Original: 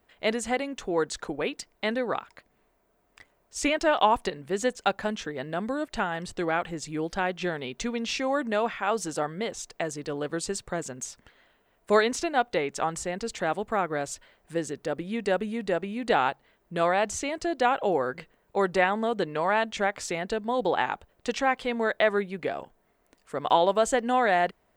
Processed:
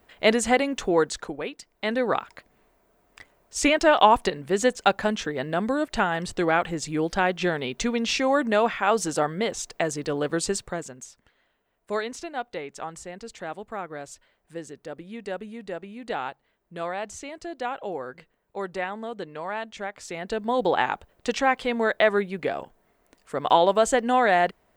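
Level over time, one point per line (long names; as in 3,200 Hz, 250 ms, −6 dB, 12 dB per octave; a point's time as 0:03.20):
0:00.87 +7 dB
0:01.60 −5.5 dB
0:02.04 +5 dB
0:10.52 +5 dB
0:11.08 −7 dB
0:19.99 −7 dB
0:20.45 +3 dB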